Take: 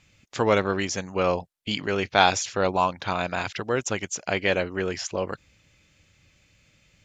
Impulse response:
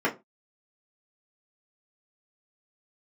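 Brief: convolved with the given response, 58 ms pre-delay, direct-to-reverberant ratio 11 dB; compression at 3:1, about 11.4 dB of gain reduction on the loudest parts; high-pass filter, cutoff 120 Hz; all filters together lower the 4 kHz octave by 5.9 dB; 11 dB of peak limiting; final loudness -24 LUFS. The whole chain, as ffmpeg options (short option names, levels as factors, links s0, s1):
-filter_complex "[0:a]highpass=120,equalizer=f=4000:t=o:g=-8,acompressor=threshold=0.0355:ratio=3,alimiter=limit=0.0708:level=0:latency=1,asplit=2[s0][s1];[1:a]atrim=start_sample=2205,adelay=58[s2];[s1][s2]afir=irnorm=-1:irlink=0,volume=0.0631[s3];[s0][s3]amix=inputs=2:normalize=0,volume=3.98"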